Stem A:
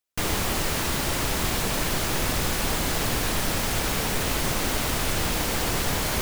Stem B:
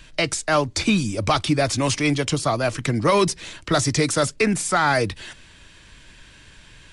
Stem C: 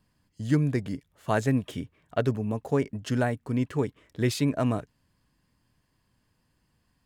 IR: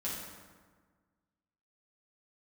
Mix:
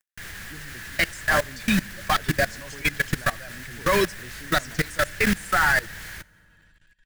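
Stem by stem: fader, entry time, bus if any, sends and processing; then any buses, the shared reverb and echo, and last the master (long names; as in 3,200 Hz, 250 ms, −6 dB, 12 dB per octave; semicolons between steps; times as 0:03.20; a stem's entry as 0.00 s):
−4.0 dB, 0.00 s, send −23.5 dB, flat-topped bell 500 Hz −8.5 dB 2.8 octaves; automatic gain control gain up to 13.5 dB; automatic ducking −8 dB, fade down 0.95 s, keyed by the third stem
−2.5 dB, 0.80 s, send −18 dB, spectral dynamics exaggerated over time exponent 1.5; high-shelf EQ 4,300 Hz +4 dB; comb filter 5.4 ms, depth 47%
−5.0 dB, 0.00 s, no send, bit-depth reduction 10 bits, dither none; high-shelf EQ 3,800 Hz +10.5 dB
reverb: on, RT60 1.5 s, pre-delay 5 ms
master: parametric band 1,700 Hz +14 dB 0.49 octaves; hum removal 300 Hz, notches 38; output level in coarse steps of 19 dB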